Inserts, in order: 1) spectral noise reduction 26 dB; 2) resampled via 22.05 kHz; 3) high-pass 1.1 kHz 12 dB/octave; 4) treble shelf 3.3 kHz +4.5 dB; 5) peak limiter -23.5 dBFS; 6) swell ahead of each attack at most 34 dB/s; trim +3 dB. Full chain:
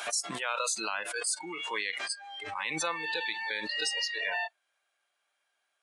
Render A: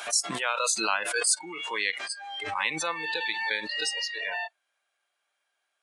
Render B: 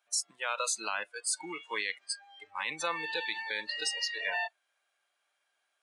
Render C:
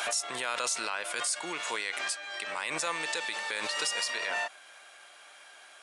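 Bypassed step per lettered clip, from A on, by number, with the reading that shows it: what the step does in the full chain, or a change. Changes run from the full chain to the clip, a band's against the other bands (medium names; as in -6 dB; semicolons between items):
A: 5, crest factor change +3.5 dB; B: 6, 125 Hz band -6.5 dB; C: 1, 125 Hz band -4.0 dB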